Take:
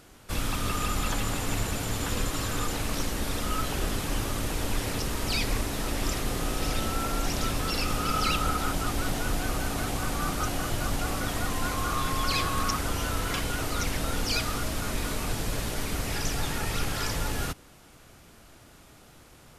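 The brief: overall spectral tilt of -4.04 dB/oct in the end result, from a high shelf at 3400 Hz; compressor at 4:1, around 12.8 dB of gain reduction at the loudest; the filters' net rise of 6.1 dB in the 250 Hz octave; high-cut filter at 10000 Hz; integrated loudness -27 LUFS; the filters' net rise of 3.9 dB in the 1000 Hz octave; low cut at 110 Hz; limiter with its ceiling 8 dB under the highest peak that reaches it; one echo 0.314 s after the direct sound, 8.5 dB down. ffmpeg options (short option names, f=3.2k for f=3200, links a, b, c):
-af "highpass=110,lowpass=10k,equalizer=f=250:t=o:g=7.5,equalizer=f=1k:t=o:g=4,highshelf=f=3.4k:g=6,acompressor=threshold=-36dB:ratio=4,alimiter=level_in=7dB:limit=-24dB:level=0:latency=1,volume=-7dB,aecho=1:1:314:0.376,volume=12.5dB"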